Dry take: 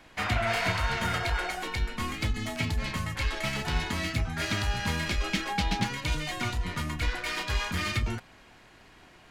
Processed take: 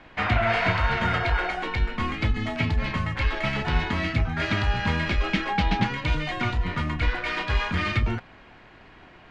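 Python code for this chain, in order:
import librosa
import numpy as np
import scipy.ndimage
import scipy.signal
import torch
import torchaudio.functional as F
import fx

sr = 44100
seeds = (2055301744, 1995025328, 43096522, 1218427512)

y = scipy.signal.sosfilt(scipy.signal.butter(2, 2900.0, 'lowpass', fs=sr, output='sos'), x)
y = F.gain(torch.from_numpy(y), 5.5).numpy()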